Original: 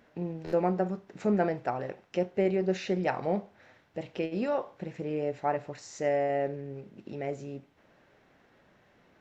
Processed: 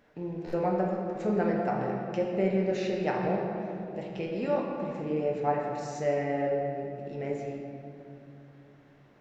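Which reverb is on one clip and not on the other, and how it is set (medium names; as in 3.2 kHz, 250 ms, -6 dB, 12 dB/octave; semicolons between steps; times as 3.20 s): simulated room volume 120 m³, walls hard, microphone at 0.45 m; trim -3 dB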